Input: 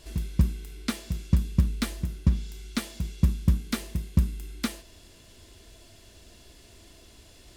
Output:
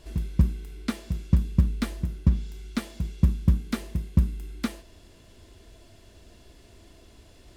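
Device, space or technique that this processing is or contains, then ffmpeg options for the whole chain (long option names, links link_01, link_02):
behind a face mask: -af "highshelf=frequency=2300:gain=-8,volume=1.5dB"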